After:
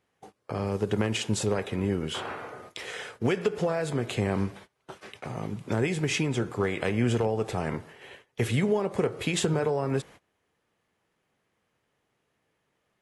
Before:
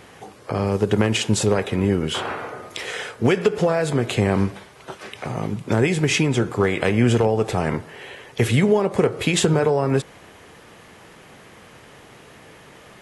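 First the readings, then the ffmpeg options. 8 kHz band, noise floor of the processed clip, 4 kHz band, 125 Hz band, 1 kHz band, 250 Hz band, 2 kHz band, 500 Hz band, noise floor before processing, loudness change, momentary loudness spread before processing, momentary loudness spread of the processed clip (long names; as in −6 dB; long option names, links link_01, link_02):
−8.0 dB, −77 dBFS, −8.0 dB, −8.0 dB, −8.0 dB, −8.0 dB, −8.0 dB, −8.0 dB, −47 dBFS, −8.0 dB, 15 LU, 14 LU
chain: -af "agate=range=-22dB:threshold=-38dB:ratio=16:detection=peak,volume=-8dB"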